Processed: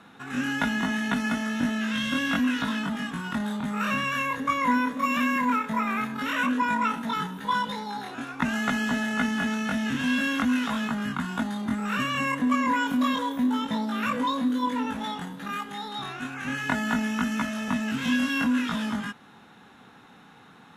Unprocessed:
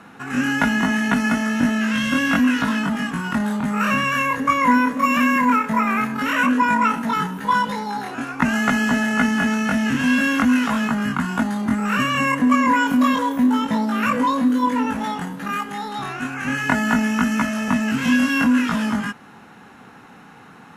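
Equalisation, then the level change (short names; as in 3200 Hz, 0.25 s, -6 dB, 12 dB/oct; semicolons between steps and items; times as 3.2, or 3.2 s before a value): bell 3600 Hz +11.5 dB 0.26 oct; -7.5 dB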